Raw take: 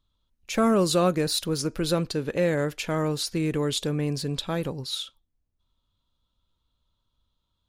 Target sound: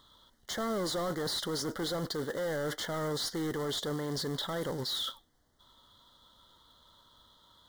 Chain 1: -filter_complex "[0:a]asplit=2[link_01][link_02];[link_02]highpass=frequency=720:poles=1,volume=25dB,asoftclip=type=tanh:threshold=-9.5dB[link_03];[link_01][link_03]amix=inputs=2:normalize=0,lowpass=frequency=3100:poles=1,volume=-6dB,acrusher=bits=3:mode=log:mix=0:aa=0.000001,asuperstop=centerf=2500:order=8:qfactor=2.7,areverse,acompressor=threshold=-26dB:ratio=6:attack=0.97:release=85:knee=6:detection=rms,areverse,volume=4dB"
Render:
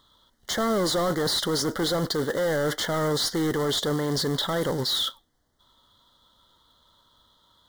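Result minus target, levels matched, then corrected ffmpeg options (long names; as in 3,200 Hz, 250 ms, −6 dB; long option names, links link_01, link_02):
downward compressor: peak gain reduction −8.5 dB
-filter_complex "[0:a]asplit=2[link_01][link_02];[link_02]highpass=frequency=720:poles=1,volume=25dB,asoftclip=type=tanh:threshold=-9.5dB[link_03];[link_01][link_03]amix=inputs=2:normalize=0,lowpass=frequency=3100:poles=1,volume=-6dB,acrusher=bits=3:mode=log:mix=0:aa=0.000001,asuperstop=centerf=2500:order=8:qfactor=2.7,areverse,acompressor=threshold=-36.5dB:ratio=6:attack=0.97:release=85:knee=6:detection=rms,areverse,volume=4dB"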